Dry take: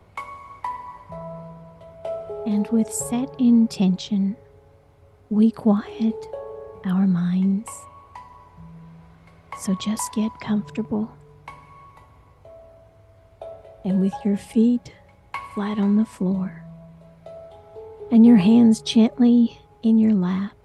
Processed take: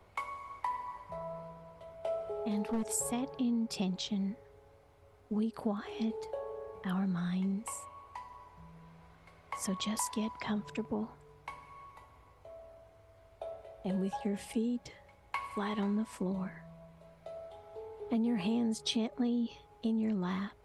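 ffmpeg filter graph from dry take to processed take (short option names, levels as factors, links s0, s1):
-filter_complex "[0:a]asettb=1/sr,asplit=3[s0][s1][s2];[s0]atrim=end=2.694[s3];[s1]atrim=start=2.69:end=3.1,asetpts=PTS-STARTPTS,afade=t=in:d=0.004:c=qsin,afade=t=out:st=0.406:d=0.004:c=qsin,acompressor=mode=upward:threshold=0.0631:ratio=2.5:attack=3.2:release=140:knee=2.83:detection=peak,aeval=exprs='clip(val(0),-1,0.141)':c=same[s4];[s2]atrim=start=3.096[s5];[s3][s4]acrossfade=d=0.004:c1=hsin:c2=qsin[s6];[s6][s5]acrossfade=d=0.004:c1=qsin:c2=hsin,equalizer=f=140:w=0.59:g=-8.5,acompressor=threshold=0.0562:ratio=6,volume=0.596"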